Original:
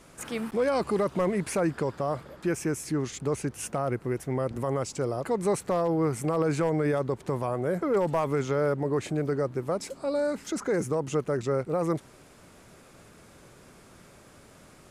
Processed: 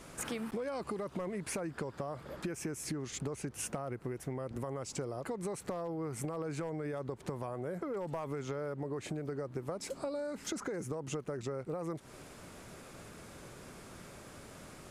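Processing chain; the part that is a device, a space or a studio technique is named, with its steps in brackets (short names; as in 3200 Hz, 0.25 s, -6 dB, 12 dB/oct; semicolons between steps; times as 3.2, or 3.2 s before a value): serial compression, leveller first (compressor 3:1, threshold -27 dBFS, peak gain reduction 5 dB; compressor 10:1, threshold -37 dBFS, peak gain reduction 12 dB); gain +2 dB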